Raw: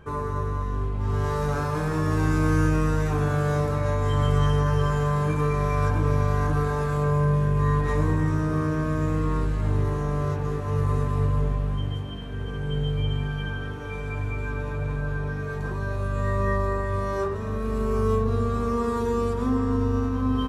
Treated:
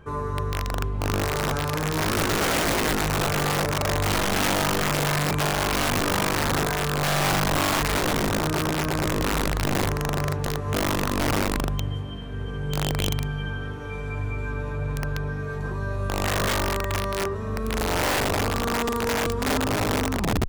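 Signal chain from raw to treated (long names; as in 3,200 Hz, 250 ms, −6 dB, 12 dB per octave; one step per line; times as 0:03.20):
turntable brake at the end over 0.34 s
wrap-around overflow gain 18 dB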